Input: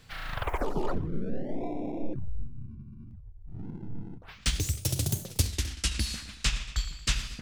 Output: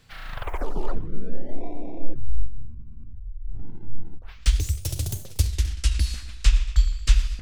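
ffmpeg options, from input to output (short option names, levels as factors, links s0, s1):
-af "asubboost=boost=11:cutoff=51,volume=0.841"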